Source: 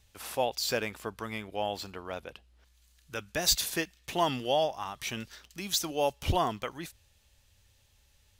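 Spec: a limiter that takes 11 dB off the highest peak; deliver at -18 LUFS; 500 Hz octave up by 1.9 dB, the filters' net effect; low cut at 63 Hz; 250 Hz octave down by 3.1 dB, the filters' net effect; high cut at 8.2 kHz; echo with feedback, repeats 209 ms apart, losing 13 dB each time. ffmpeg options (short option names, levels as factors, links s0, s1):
-af "highpass=63,lowpass=8200,equalizer=f=250:t=o:g=-6,equalizer=f=500:t=o:g=3.5,alimiter=limit=0.0631:level=0:latency=1,aecho=1:1:209|418|627:0.224|0.0493|0.0108,volume=8.41"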